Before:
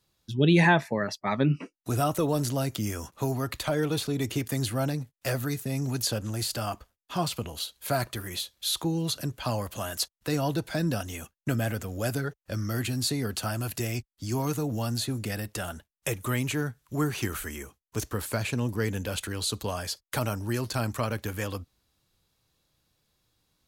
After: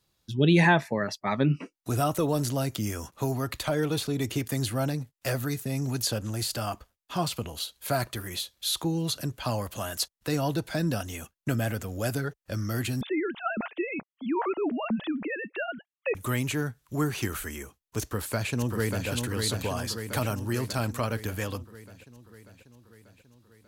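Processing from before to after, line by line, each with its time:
13.01–16.15 sine-wave speech
18–19.08 echo throw 0.59 s, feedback 65%, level -4.5 dB

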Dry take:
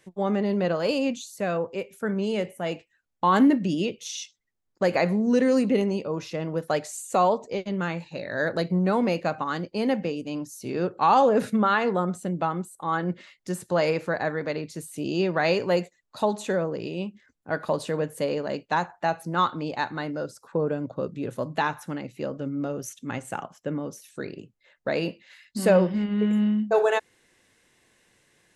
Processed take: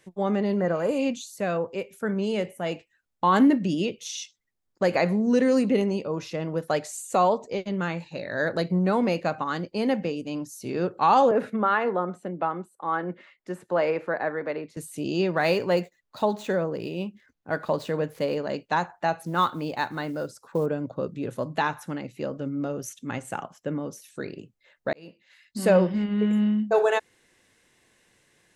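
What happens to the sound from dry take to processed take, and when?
0.61–1.03 spectral repair 2100–5900 Hz
11.31–14.77 three-band isolator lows -12 dB, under 240 Hz, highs -16 dB, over 2700 Hz
15.33–18.38 median filter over 5 samples
19.19–20.66 short-mantissa float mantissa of 4-bit
24.93–25.75 fade in

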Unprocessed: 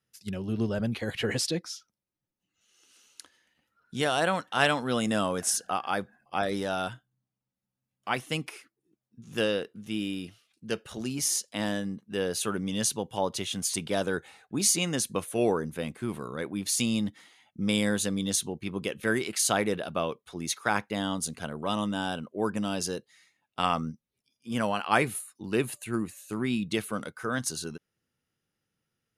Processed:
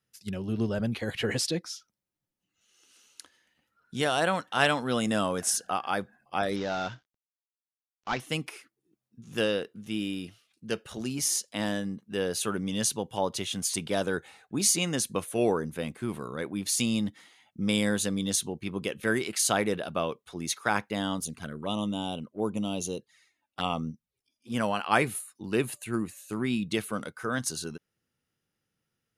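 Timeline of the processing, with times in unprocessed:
6.56–8.2 CVSD 32 kbps
21.2–24.54 envelope flanger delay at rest 3.8 ms, full sweep at -29 dBFS

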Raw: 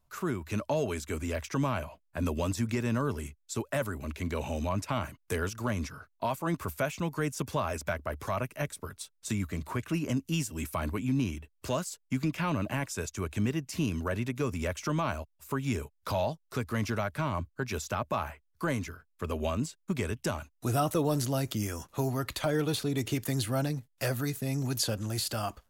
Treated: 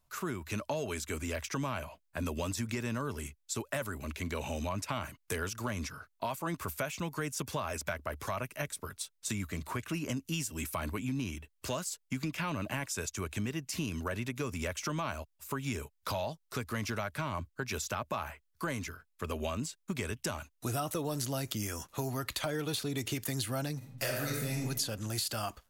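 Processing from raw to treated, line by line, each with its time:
23.77–24.58 reverb throw, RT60 0.94 s, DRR -2 dB
whole clip: tilt shelf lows -3 dB, about 1200 Hz; compressor 4:1, threshold -31 dBFS

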